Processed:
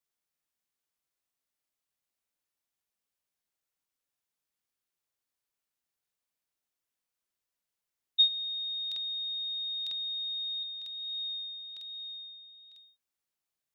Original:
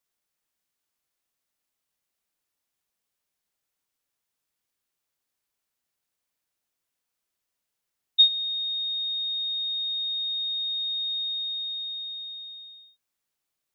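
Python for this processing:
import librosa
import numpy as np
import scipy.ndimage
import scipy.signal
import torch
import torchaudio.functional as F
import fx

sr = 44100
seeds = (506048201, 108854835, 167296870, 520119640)

y = fx.rotary(x, sr, hz=1.2, at=(10.63, 12.72))
y = fx.buffer_crackle(y, sr, first_s=0.32, period_s=0.95, block=2048, kind='repeat')
y = y * 10.0 ** (-6.0 / 20.0)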